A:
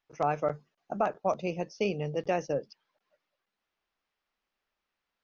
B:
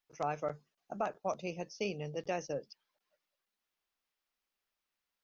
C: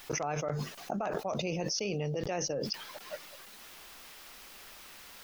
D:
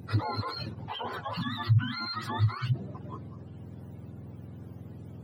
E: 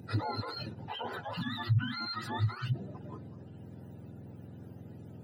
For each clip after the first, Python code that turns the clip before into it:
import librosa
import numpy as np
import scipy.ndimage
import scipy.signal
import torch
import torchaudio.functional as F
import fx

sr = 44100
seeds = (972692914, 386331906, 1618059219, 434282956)

y1 = fx.high_shelf(x, sr, hz=4200.0, db=11.5)
y1 = y1 * 10.0 ** (-7.5 / 20.0)
y2 = fx.env_flatten(y1, sr, amount_pct=100)
y2 = y2 * 10.0 ** (-2.5 / 20.0)
y3 = fx.octave_mirror(y2, sr, pivot_hz=790.0)
y3 = y3 * 10.0 ** (2.0 / 20.0)
y4 = fx.notch_comb(y3, sr, f0_hz=1100.0)
y4 = y4 * 10.0 ** (-1.5 / 20.0)